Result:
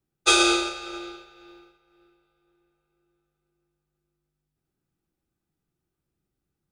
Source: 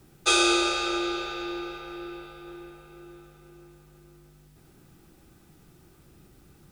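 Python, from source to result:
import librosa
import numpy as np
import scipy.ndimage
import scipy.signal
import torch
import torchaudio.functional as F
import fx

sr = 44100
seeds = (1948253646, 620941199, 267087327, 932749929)

y = fx.upward_expand(x, sr, threshold_db=-40.0, expansion=2.5)
y = F.gain(torch.from_numpy(y), 4.5).numpy()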